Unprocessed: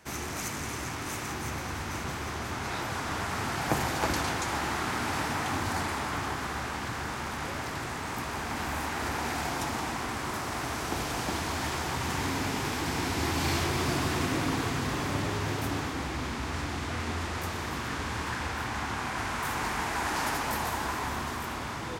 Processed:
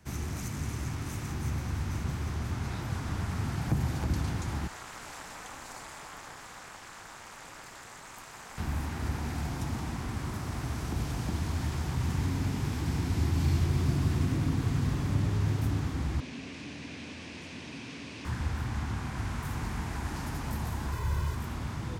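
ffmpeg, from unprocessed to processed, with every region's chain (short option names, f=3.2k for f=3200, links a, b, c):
-filter_complex "[0:a]asettb=1/sr,asplit=3[a][b][c];[a]atrim=end=4.674[d];[b]atrim=start=4.67:end=8.58,asetpts=PTS-STARTPTS,afade=t=in:d=0.004:c=qsin,afade=t=out:st=3.906:d=0.004:c=qsin,highpass=590,equalizer=f=7.4k:t=o:w=0.46:g=6,tremolo=f=260:d=0.919[e];[c]atrim=start=8.576[f];[d][e]acrossfade=d=0.004:c1=hsin:c2=qsin[g];[g][f]acrossfade=d=0.004:c1=qsin:c2=hsin,asettb=1/sr,asplit=3[h][i][j];[h]atrim=end=16.204[k];[i]atrim=start=16.2:end=18.25,asetpts=PTS-STARTPTS,afade=t=in:d=0.004:c=qsin,afade=t=out:st=2.046:d=0.004:c=qsin,aeval=exprs='0.02*(abs(mod(val(0)/0.02+3,4)-2)-1)':c=same,highpass=180,equalizer=f=270:t=q:w=4:g=8,equalizer=f=840:t=q:w=4:g=-4,equalizer=f=1.3k:t=q:w=4:g=-8,equalizer=f=2.5k:t=q:w=4:g=8,equalizer=f=7.4k:t=q:w=4:g=-5,lowpass=f=7.8k:w=0.5412,lowpass=f=7.8k:w=1.3066[l];[j]atrim=start=18.246[m];[k][l]acrossfade=d=0.004:c1=hsin:c2=qsin[n];[n][m]acrossfade=d=0.004:c1=qsin:c2=hsin,asettb=1/sr,asplit=3[o][p][q];[o]atrim=end=20.924[r];[p]atrim=start=20.92:end=21.35,asetpts=PTS-STARTPTS,afade=t=in:d=0.004:c=qsin,afade=t=out:st=0.426:d=0.004:c=qsin,equalizer=f=13k:w=5.6:g=4.5,aecho=1:1:2:0.79,atrim=end_sample=18963,acrusher=bits=6:mode=log:mix=0:aa=0.000001[s];[q]atrim=start=21.346[t];[r][s]acrossfade=d=0.004:c1=hsin:c2=qsin[u];[u][t]acrossfade=d=0.004:c1=qsin:c2=hsin,bass=f=250:g=15,treble=f=4k:g=2,acrossover=split=330[v][w];[w]acompressor=threshold=-31dB:ratio=6[x];[v][x]amix=inputs=2:normalize=0,volume=-7.5dB"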